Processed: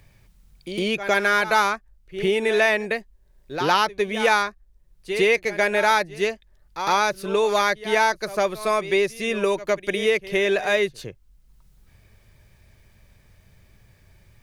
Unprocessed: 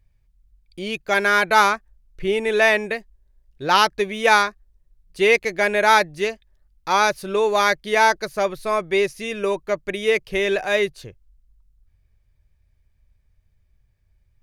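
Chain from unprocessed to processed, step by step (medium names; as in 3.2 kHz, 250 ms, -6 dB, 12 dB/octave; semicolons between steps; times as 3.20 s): reverse echo 109 ms -17.5 dB; three bands compressed up and down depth 70%; trim -2 dB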